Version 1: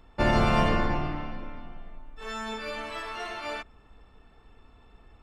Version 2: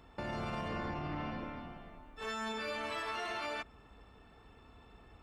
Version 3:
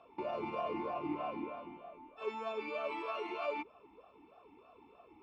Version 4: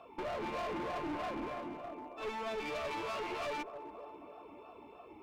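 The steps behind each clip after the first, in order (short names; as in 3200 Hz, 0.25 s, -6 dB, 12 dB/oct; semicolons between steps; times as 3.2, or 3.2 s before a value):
HPF 54 Hz 12 dB/oct; compressor, threshold -32 dBFS, peak gain reduction 12 dB; limiter -30 dBFS, peak gain reduction 8.5 dB
vowel sweep a-u 3.2 Hz; gain +11.5 dB
soft clip -36.5 dBFS, distortion -13 dB; band-limited delay 0.272 s, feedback 63%, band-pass 550 Hz, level -12 dB; one-sided clip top -48.5 dBFS; gain +6 dB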